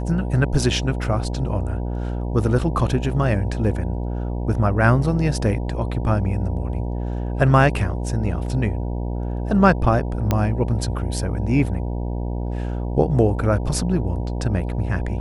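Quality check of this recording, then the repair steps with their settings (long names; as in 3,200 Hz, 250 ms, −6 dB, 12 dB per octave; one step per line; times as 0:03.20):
mains buzz 60 Hz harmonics 16 −25 dBFS
0:10.31: click −6 dBFS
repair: click removal
hum removal 60 Hz, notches 16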